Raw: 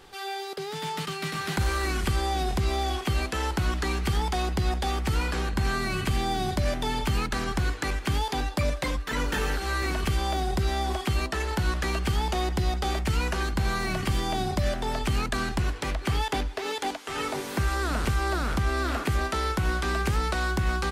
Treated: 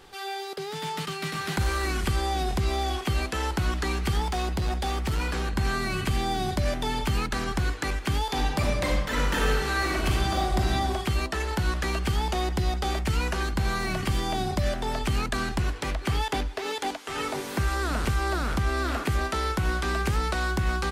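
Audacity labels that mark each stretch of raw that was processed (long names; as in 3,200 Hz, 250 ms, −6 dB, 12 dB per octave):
4.220000	5.460000	hard clipping −22.5 dBFS
8.250000	10.720000	thrown reverb, RT60 1.2 s, DRR 0.5 dB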